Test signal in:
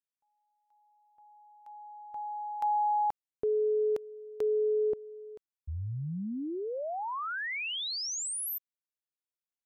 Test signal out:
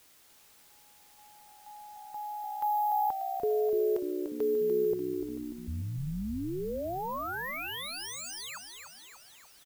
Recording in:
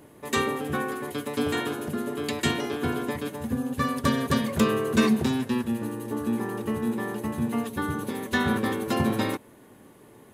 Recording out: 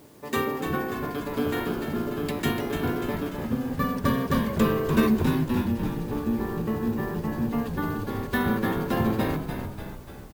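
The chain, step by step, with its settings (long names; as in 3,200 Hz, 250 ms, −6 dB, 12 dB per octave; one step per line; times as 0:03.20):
high-shelf EQ 2,600 Hz −8 dB
bad sample-rate conversion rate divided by 3×, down none, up hold
bit-depth reduction 10 bits, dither triangular
on a send: echo with shifted repeats 294 ms, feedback 57%, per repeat −64 Hz, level −7 dB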